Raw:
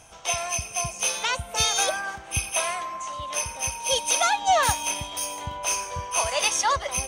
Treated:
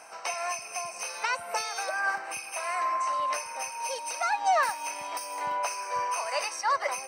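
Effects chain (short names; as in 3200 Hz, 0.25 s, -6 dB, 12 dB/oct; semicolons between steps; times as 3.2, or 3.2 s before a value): Bessel high-pass 360 Hz, order 2; tilt +4 dB/oct; compressor 6:1, threshold -24 dBFS, peak gain reduction 14.5 dB; running mean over 13 samples; gain +7.5 dB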